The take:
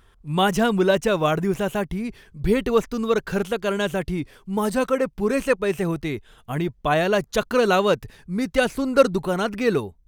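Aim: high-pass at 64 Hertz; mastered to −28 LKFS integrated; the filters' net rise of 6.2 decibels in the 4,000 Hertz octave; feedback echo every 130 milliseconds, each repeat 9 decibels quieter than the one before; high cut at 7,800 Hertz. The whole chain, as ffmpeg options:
ffmpeg -i in.wav -af "highpass=64,lowpass=7800,equalizer=frequency=4000:width_type=o:gain=8,aecho=1:1:130|260|390|520:0.355|0.124|0.0435|0.0152,volume=-6.5dB" out.wav

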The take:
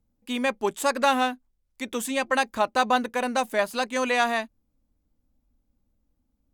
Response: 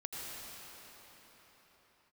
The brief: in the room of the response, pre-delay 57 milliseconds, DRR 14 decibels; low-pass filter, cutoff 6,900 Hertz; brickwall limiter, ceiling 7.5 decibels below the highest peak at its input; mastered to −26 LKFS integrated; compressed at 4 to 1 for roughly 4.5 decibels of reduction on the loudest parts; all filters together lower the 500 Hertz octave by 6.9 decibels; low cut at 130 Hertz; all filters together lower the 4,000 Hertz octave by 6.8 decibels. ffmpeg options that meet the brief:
-filter_complex "[0:a]highpass=130,lowpass=6900,equalizer=frequency=500:width_type=o:gain=-8,equalizer=frequency=4000:width_type=o:gain=-8,acompressor=threshold=-25dB:ratio=4,alimiter=limit=-23dB:level=0:latency=1,asplit=2[link_01][link_02];[1:a]atrim=start_sample=2205,adelay=57[link_03];[link_02][link_03]afir=irnorm=-1:irlink=0,volume=-15.5dB[link_04];[link_01][link_04]amix=inputs=2:normalize=0,volume=8dB"

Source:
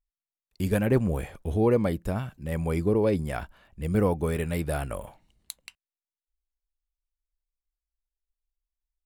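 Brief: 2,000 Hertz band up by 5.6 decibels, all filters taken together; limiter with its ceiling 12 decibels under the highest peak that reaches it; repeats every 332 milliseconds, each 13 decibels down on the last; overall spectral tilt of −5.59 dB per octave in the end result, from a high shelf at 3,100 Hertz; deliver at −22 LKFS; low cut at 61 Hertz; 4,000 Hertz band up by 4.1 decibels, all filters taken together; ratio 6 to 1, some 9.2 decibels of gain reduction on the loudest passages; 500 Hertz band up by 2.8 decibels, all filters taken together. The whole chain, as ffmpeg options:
ffmpeg -i in.wav -af "highpass=61,equalizer=frequency=500:width_type=o:gain=3,equalizer=frequency=2000:width_type=o:gain=7,highshelf=frequency=3100:gain=-3.5,equalizer=frequency=4000:width_type=o:gain=5,acompressor=threshold=-26dB:ratio=6,alimiter=level_in=3.5dB:limit=-24dB:level=0:latency=1,volume=-3.5dB,aecho=1:1:332|664|996:0.224|0.0493|0.0108,volume=15dB" out.wav

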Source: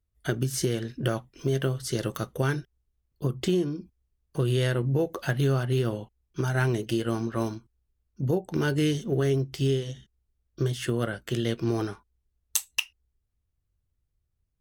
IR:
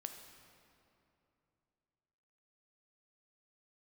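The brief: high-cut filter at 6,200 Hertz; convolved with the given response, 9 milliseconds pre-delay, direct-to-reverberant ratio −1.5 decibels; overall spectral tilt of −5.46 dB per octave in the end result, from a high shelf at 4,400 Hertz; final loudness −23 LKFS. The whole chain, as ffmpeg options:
-filter_complex "[0:a]lowpass=6200,highshelf=frequency=4400:gain=9,asplit=2[link_01][link_02];[1:a]atrim=start_sample=2205,adelay=9[link_03];[link_02][link_03]afir=irnorm=-1:irlink=0,volume=4.5dB[link_04];[link_01][link_04]amix=inputs=2:normalize=0,volume=1dB"

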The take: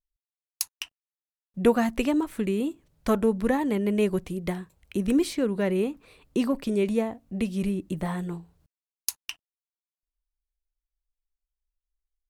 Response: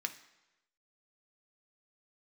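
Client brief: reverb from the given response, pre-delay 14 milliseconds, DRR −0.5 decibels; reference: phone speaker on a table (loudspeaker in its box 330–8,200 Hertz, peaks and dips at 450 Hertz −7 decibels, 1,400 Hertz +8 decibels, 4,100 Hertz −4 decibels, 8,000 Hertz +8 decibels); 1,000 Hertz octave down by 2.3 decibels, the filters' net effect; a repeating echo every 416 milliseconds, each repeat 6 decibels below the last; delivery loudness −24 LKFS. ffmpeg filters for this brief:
-filter_complex "[0:a]equalizer=frequency=1000:width_type=o:gain=-5,aecho=1:1:416|832|1248|1664|2080|2496:0.501|0.251|0.125|0.0626|0.0313|0.0157,asplit=2[link_01][link_02];[1:a]atrim=start_sample=2205,adelay=14[link_03];[link_02][link_03]afir=irnorm=-1:irlink=0,volume=-0.5dB[link_04];[link_01][link_04]amix=inputs=2:normalize=0,highpass=frequency=330:width=0.5412,highpass=frequency=330:width=1.3066,equalizer=frequency=450:width_type=q:width=4:gain=-7,equalizer=frequency=1400:width_type=q:width=4:gain=8,equalizer=frequency=4100:width_type=q:width=4:gain=-4,equalizer=frequency=8000:width_type=q:width=4:gain=8,lowpass=frequency=8200:width=0.5412,lowpass=frequency=8200:width=1.3066,volume=7dB"

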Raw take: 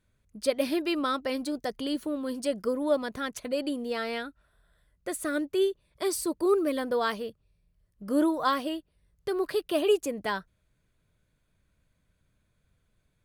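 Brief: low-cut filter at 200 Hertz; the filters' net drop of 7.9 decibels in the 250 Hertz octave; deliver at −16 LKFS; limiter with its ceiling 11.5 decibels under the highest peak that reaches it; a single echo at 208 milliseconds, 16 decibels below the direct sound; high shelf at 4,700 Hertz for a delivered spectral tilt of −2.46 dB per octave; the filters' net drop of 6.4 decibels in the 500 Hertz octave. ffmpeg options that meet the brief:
ffmpeg -i in.wav -af "highpass=200,equalizer=frequency=250:width_type=o:gain=-7,equalizer=frequency=500:width_type=o:gain=-5.5,highshelf=frequency=4700:gain=-9,alimiter=level_in=3.5dB:limit=-24dB:level=0:latency=1,volume=-3.5dB,aecho=1:1:208:0.158,volume=22dB" out.wav

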